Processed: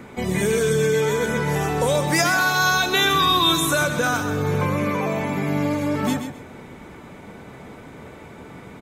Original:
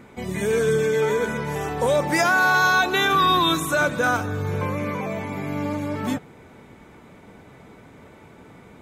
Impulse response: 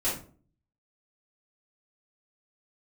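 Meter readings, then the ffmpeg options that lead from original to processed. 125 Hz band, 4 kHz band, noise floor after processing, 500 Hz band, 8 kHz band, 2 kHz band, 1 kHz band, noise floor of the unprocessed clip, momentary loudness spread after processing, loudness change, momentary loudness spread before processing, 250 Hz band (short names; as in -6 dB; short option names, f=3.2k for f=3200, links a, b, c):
+4.0 dB, +5.0 dB, -42 dBFS, +0.5 dB, +6.5 dB, -0.5 dB, -0.5 dB, -48 dBFS, 7 LU, +1.5 dB, 11 LU, +3.0 dB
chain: -filter_complex "[0:a]acrossover=split=130|3000[a][b][c];[b]acompressor=threshold=-27dB:ratio=3[d];[a][d][c]amix=inputs=3:normalize=0,bandreject=f=50:t=h:w=6,bandreject=f=100:t=h:w=6,aecho=1:1:130|260|390:0.355|0.0781|0.0172,volume=6dB"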